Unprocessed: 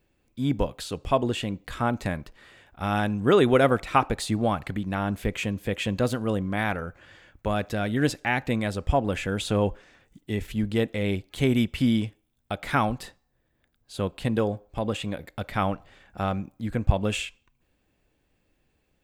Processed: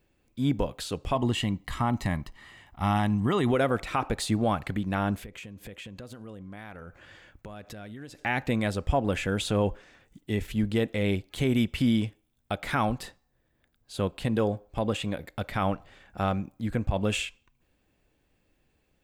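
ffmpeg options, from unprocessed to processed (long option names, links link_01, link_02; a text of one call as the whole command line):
ffmpeg -i in.wav -filter_complex "[0:a]asettb=1/sr,asplit=3[link_01][link_02][link_03];[link_01]atrim=end=1.154[link_04];[link_02]atrim=start=1.15:end=3.52,asetpts=PTS-STARTPTS,afade=type=in:duration=0.004:curve=qsin,afade=type=out:start_time=2.366:duration=0.004:curve=qsin,aecho=1:1:1:0.59,atrim=end_sample=104517[link_05];[link_03]atrim=start=3.516[link_06];[link_04][link_05]acrossfade=duration=0.004:curve1=hsin:curve2=qsin[link_07];[link_07][link_06]acrossfade=duration=0.004:curve1=qsin:curve2=hsin,asplit=3[link_08][link_09][link_10];[link_08]afade=type=out:start_time=5.19:duration=0.02[link_11];[link_09]acompressor=threshold=-39dB:ratio=8:attack=3.2:release=140:knee=1:detection=peak,afade=type=in:start_time=5.19:duration=0.02,afade=type=out:start_time=8.19:duration=0.02[link_12];[link_10]afade=type=in:start_time=8.19:duration=0.02[link_13];[link_11][link_12][link_13]amix=inputs=3:normalize=0,alimiter=limit=-15dB:level=0:latency=1:release=77" out.wav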